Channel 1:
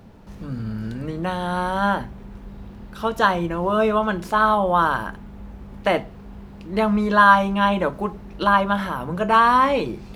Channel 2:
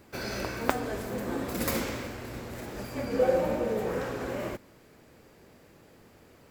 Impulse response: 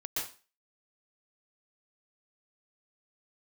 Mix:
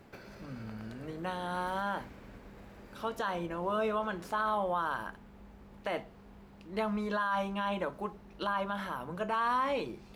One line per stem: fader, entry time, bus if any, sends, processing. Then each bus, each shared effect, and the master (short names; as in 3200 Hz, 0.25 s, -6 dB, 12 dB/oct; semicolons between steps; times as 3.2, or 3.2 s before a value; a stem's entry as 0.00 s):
-10.0 dB, 0.00 s, no send, no echo send, dry
-1.5 dB, 0.00 s, no send, echo send -12.5 dB, tone controls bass +5 dB, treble -9 dB; compressor, threshold -38 dBFS, peak gain reduction 18.5 dB; auto duck -11 dB, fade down 0.25 s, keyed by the first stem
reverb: off
echo: feedback echo 0.115 s, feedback 60%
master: low shelf 230 Hz -7.5 dB; limiter -23 dBFS, peak gain reduction 11.5 dB